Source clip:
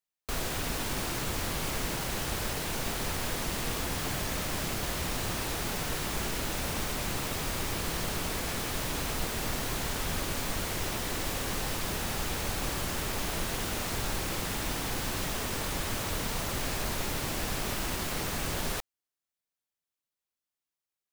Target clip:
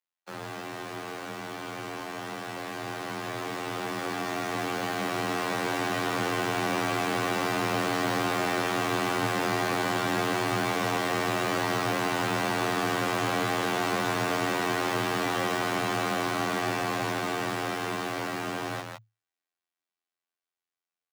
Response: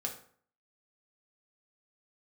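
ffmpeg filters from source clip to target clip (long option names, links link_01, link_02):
-filter_complex "[0:a]afftfilt=real='hypot(re,im)*cos(PI*b)':imag='0':win_size=2048:overlap=0.75,afreqshift=110,aecho=1:1:160:0.447,asplit=2[link_01][link_02];[link_02]highpass=frequency=720:poles=1,volume=19dB,asoftclip=type=tanh:threshold=-16dB[link_03];[link_01][link_03]amix=inputs=2:normalize=0,lowpass=frequency=1900:poles=1,volume=-6dB,dynaudnorm=framelen=830:gausssize=11:maxgain=10.5dB,volume=-7dB"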